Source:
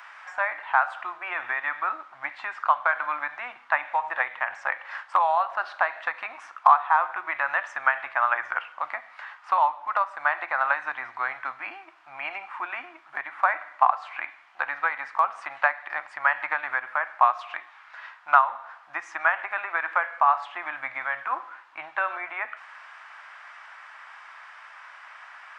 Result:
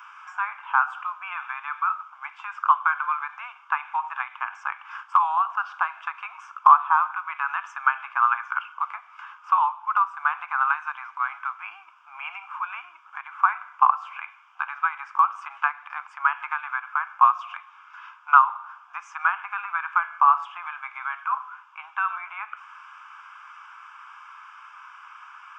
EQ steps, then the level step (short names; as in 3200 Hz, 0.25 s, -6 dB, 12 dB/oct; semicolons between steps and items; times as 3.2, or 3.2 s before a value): resonant high-pass 1100 Hz, resonance Q 1.8; fixed phaser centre 2800 Hz, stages 8; -1.0 dB